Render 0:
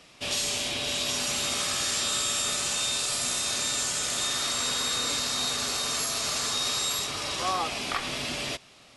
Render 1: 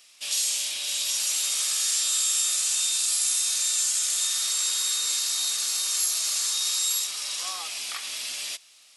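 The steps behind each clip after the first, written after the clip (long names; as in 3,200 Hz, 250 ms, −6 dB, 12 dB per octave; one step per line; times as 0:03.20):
first difference
level +5.5 dB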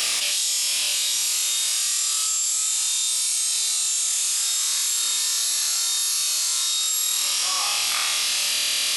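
flutter between parallel walls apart 4.4 metres, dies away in 1.2 s
envelope flattener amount 100%
level −7.5 dB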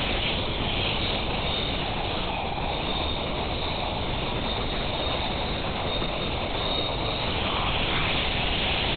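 in parallel at −6 dB: decimation without filtering 27×
on the sum: linear-prediction vocoder at 8 kHz whisper
double-tracking delay 40 ms −11 dB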